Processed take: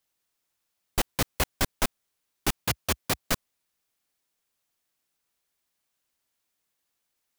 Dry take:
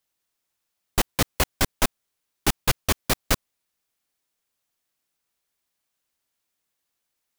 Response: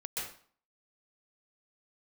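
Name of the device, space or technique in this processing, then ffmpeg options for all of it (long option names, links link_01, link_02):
saturation between pre-emphasis and de-emphasis: -filter_complex "[0:a]highshelf=frequency=2500:gain=10.5,asoftclip=type=tanh:threshold=-12.5dB,highshelf=frequency=2500:gain=-10.5,asettb=1/sr,asplit=3[link_01][link_02][link_03];[link_01]atrim=end=2.594[link_04];[link_02]atrim=start=2.59:end=3.32,asetpts=PTS-STARTPTS,afade=type=in:duration=0.004:curve=qsin,afade=type=out:start_time=0.726:duration=0.004:curve=qsin,highpass=frequency=64:width=0.5412,highpass=frequency=64:width=1.3066[link_05];[link_03]atrim=start=3.316[link_06];[link_04][link_05]acrossfade=duration=0.004:curve1=hsin:curve2=qsin[link_07];[link_07][link_06]acrossfade=duration=0.004:curve1=qsin:curve2=hsin"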